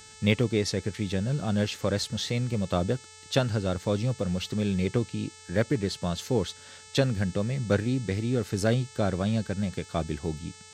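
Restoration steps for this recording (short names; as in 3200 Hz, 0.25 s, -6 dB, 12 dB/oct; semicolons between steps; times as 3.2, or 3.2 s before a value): de-hum 435.2 Hz, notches 20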